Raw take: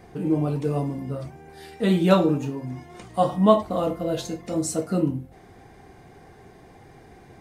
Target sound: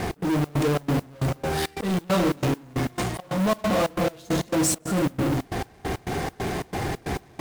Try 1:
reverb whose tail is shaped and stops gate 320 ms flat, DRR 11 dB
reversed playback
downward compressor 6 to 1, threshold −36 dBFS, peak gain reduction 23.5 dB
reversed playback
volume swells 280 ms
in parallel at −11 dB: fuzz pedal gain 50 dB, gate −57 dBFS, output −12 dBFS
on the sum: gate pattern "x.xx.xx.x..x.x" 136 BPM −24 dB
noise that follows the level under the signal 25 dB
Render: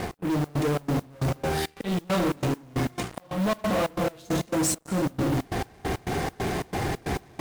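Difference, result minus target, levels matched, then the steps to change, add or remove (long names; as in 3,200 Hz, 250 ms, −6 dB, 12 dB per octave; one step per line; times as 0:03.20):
downward compressor: peak gain reduction +8.5 dB
change: downward compressor 6 to 1, threshold −26 dBFS, peak gain reduction 15 dB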